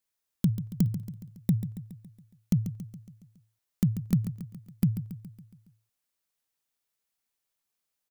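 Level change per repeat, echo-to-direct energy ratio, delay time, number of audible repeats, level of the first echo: -5.0 dB, -9.5 dB, 139 ms, 5, -11.0 dB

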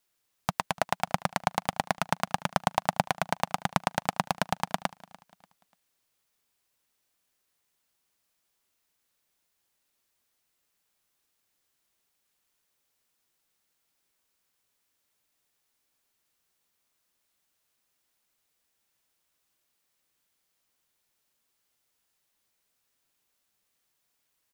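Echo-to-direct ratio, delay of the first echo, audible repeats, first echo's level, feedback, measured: -20.5 dB, 293 ms, 2, -21.0 dB, 35%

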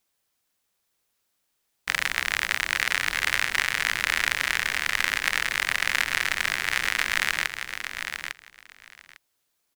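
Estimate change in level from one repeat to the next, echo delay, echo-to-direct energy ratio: -16.5 dB, 852 ms, -7.5 dB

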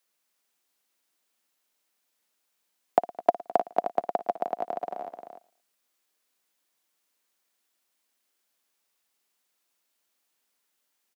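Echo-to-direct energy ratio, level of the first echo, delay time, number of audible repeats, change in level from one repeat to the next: -6.5 dB, -16.5 dB, 57 ms, 5, no regular repeats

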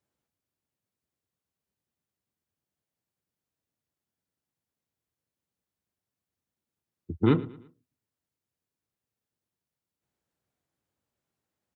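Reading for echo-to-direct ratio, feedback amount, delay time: -18.5 dB, 40%, 113 ms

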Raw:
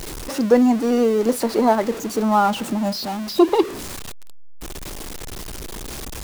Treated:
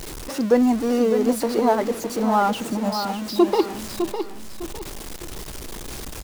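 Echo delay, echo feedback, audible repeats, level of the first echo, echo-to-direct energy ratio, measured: 606 ms, 32%, 3, -8.0 dB, -7.5 dB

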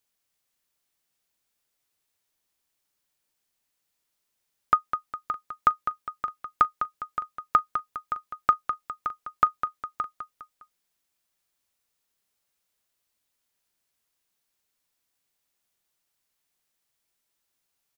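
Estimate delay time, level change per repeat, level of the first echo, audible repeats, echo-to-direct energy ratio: 204 ms, -7.5 dB, -8.5 dB, 3, -7.5 dB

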